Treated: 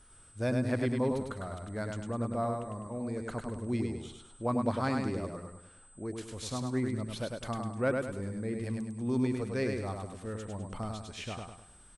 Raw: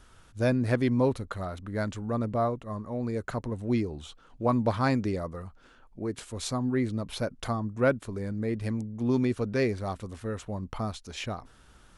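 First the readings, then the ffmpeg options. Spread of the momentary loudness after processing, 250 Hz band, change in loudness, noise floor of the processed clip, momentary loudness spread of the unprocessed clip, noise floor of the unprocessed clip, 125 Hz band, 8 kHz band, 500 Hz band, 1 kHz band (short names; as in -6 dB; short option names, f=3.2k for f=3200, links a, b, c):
11 LU, -4.0 dB, -4.5 dB, -57 dBFS, 11 LU, -57 dBFS, -4.5 dB, -1.5 dB, -4.5 dB, -4.5 dB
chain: -af "aeval=exprs='val(0)+0.002*sin(2*PI*8100*n/s)':c=same,aecho=1:1:102|204|306|408|510:0.631|0.252|0.101|0.0404|0.0162,volume=-6dB"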